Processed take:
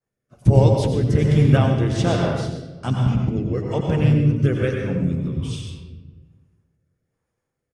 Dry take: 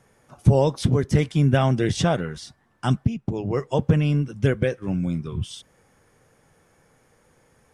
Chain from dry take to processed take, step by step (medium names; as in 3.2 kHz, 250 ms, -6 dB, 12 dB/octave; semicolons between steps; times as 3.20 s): harmony voices -4 st -7 dB; expander -45 dBFS; on a send at -1 dB: reverberation RT60 1.6 s, pre-delay 85 ms; on the sum: rotary cabinet horn 1.2 Hz